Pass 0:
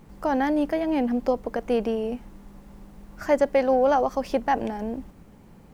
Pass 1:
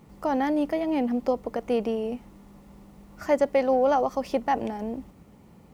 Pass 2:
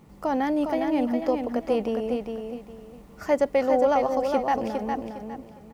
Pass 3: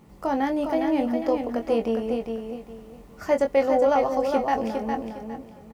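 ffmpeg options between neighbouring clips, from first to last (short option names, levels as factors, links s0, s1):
-af "highpass=53,bandreject=f=1600:w=8.5,volume=0.841"
-af "aecho=1:1:408|816|1224|1632:0.531|0.143|0.0387|0.0104"
-filter_complex "[0:a]asplit=2[s0][s1];[s1]adelay=22,volume=0.447[s2];[s0][s2]amix=inputs=2:normalize=0"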